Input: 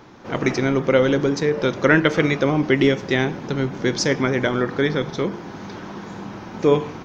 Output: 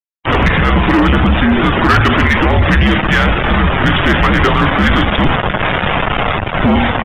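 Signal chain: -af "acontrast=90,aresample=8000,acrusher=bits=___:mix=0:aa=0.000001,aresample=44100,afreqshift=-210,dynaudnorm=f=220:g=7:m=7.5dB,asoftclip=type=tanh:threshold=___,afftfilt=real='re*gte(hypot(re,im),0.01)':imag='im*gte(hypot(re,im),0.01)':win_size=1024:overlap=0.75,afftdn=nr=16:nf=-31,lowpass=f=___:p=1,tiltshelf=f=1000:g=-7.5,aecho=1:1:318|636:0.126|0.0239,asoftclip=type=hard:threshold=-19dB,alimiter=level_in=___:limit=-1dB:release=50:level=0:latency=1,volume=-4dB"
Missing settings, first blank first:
3, -15.5dB, 1300, 24dB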